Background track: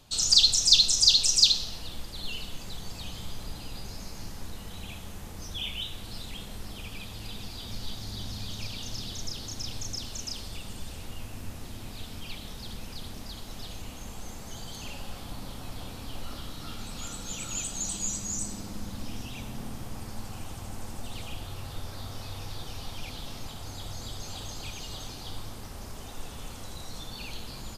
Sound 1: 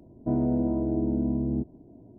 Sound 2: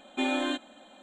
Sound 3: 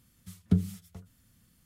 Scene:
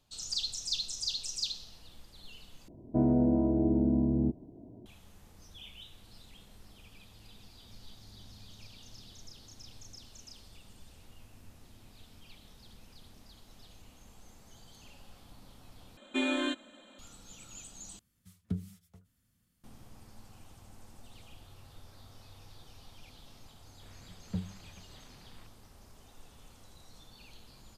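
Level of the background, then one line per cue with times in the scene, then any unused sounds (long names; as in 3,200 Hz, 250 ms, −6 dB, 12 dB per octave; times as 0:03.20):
background track −15 dB
0:02.68: overwrite with 1 −0.5 dB
0:15.97: overwrite with 2 −1.5 dB + parametric band 770 Hz −14.5 dB 0.26 octaves
0:17.99: overwrite with 3 −10.5 dB + speech leveller
0:23.82: mix in 3 −10 dB + linear delta modulator 16 kbit/s, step −41.5 dBFS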